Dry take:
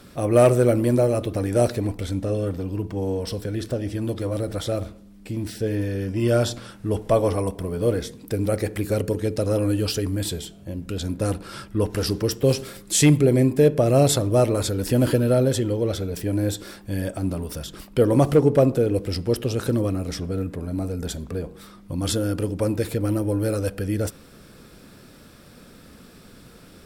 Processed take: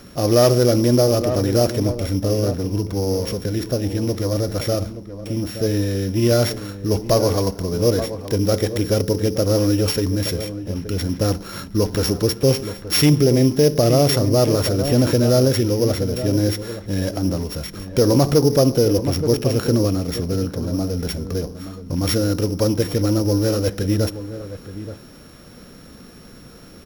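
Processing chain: sorted samples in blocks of 8 samples; echo from a far wall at 150 m, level -12 dB; loudness maximiser +10.5 dB; trim -6 dB

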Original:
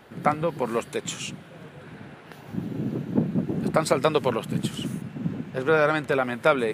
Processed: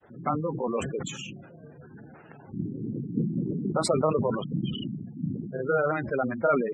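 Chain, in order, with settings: granulator 100 ms, grains 20 per s, spray 23 ms, pitch spread up and down by 0 st; spectral gate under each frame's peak -15 dB strong; decay stretcher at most 57 dB/s; trim -3 dB

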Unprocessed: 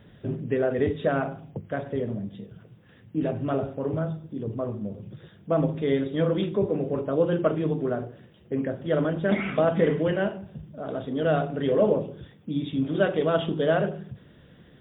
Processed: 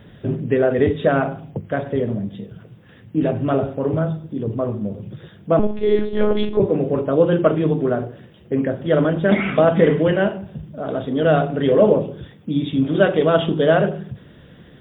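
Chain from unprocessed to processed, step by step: 5.59–6.60 s: monotone LPC vocoder at 8 kHz 210 Hz; trim +7.5 dB

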